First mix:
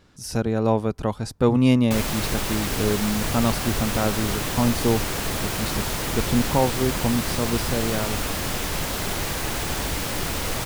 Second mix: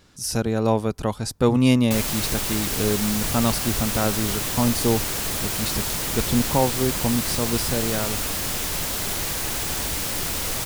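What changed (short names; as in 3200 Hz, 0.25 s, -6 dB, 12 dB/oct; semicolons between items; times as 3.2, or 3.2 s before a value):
background -3.5 dB; master: add high shelf 3900 Hz +9 dB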